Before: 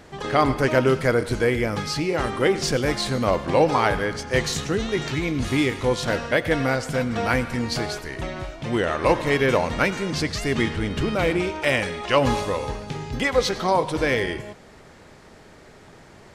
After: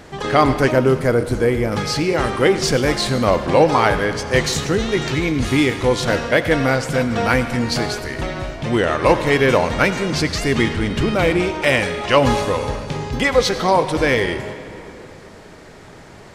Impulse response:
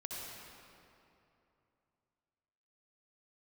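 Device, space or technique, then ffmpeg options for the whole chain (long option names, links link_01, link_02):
saturated reverb return: -filter_complex "[0:a]asplit=2[link_01][link_02];[1:a]atrim=start_sample=2205[link_03];[link_02][link_03]afir=irnorm=-1:irlink=0,asoftclip=type=tanh:threshold=-24dB,volume=-7dB[link_04];[link_01][link_04]amix=inputs=2:normalize=0,asettb=1/sr,asplit=3[link_05][link_06][link_07];[link_05]atrim=end=0.714[link_08];[link_06]atrim=start=0.71:end=1.72,asetpts=PTS-STARTPTS,afade=type=in:duration=0.004:curve=qsin,afade=type=out:start_time=1.006:duration=0.004:curve=qsin,equalizer=frequency=3000:width_type=o:width=2.9:gain=-7[link_09];[link_07]atrim=start=1.716[link_10];[link_08][link_09]acrossfade=duration=0.004:curve1=hsin:curve2=qsin[link_11];[link_11][link_10]acrossfade=duration=0.004:curve1=qsin:curve2=hsin,volume=4dB"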